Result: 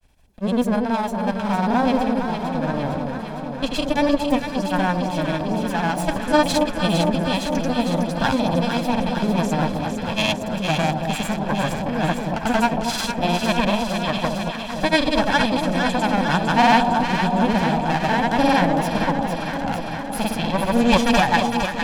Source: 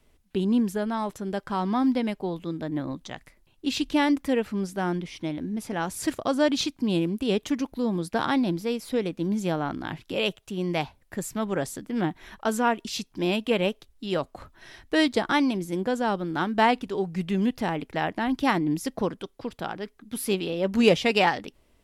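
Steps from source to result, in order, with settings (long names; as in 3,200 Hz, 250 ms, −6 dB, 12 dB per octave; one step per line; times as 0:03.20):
lower of the sound and its delayed copy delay 1.2 ms
granular cloud, grains 20 per second, pitch spread up and down by 0 semitones
delay that swaps between a low-pass and a high-pass 228 ms, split 950 Hz, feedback 84%, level −4.5 dB
level +6.5 dB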